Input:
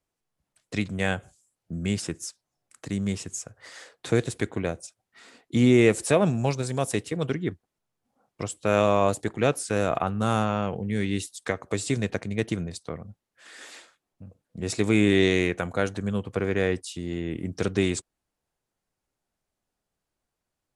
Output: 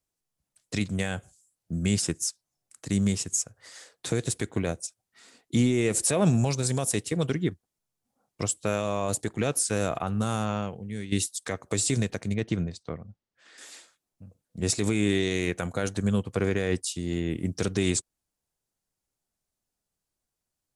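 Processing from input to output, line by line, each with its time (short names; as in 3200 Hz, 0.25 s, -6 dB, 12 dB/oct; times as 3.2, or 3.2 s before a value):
9.94–11.12 fade out, to -10.5 dB
12.34–13.58 air absorption 130 m
whole clip: tone controls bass +3 dB, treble +9 dB; limiter -16.5 dBFS; upward expander 1.5:1, over -41 dBFS; gain +3.5 dB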